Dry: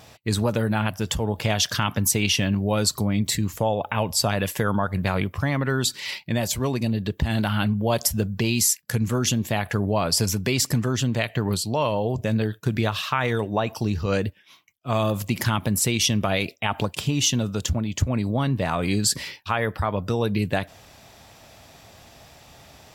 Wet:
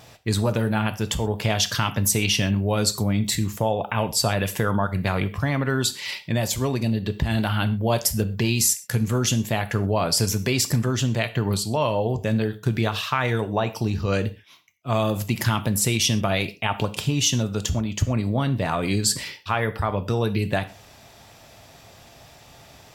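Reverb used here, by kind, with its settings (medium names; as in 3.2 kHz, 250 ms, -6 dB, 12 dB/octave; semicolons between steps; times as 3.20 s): gated-style reverb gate 150 ms falling, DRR 10.5 dB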